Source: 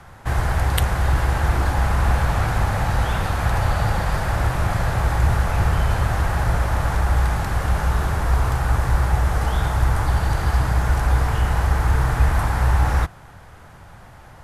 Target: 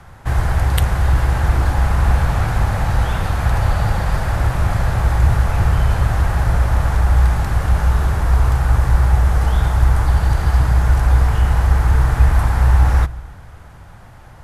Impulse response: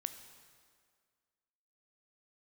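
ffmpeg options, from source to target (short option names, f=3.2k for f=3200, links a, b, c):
-filter_complex "[0:a]asplit=2[a][b];[1:a]atrim=start_sample=2205,lowshelf=f=230:g=11.5[c];[b][c]afir=irnorm=-1:irlink=0,volume=-7dB[d];[a][d]amix=inputs=2:normalize=0,volume=-2.5dB"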